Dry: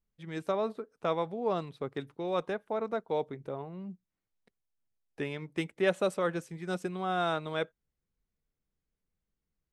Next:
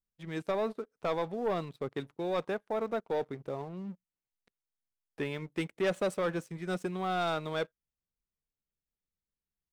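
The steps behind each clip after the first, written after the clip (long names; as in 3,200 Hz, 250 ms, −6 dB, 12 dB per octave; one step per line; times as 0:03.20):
leveller curve on the samples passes 2
level −6.5 dB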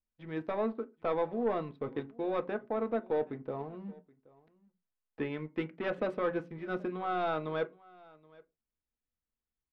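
high-frequency loss of the air 340 metres
single-tap delay 775 ms −24 dB
on a send at −7 dB: convolution reverb RT60 0.25 s, pre-delay 3 ms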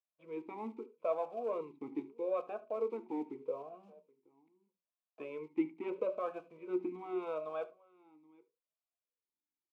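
one scale factor per block 5 bits
single-tap delay 73 ms −19 dB
formant filter swept between two vowels a-u 0.79 Hz
level +5 dB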